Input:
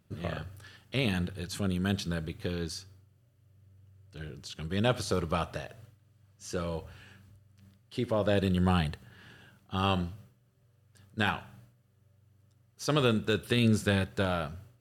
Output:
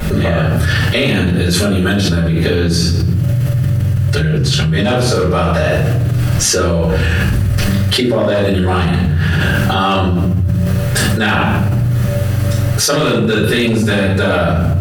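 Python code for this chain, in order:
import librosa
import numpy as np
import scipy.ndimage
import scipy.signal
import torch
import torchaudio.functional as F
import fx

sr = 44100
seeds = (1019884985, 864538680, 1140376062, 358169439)

y = fx.room_shoebox(x, sr, seeds[0], volume_m3=80.0, walls='mixed', distance_m=4.2)
y = np.clip(y, -10.0 ** (-6.5 / 20.0), 10.0 ** (-6.5 / 20.0))
y = fx.peak_eq(y, sr, hz=130.0, db=13.0, octaves=0.29, at=(2.68, 4.91))
y = fx.env_flatten(y, sr, amount_pct=100)
y = F.gain(torch.from_numpy(y), -4.0).numpy()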